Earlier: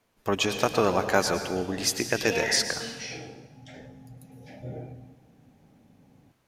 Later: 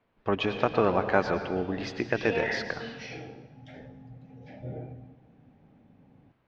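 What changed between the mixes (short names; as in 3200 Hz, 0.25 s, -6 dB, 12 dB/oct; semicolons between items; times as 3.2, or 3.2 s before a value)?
speech: add LPF 3800 Hz 12 dB/oct; master: add air absorption 220 m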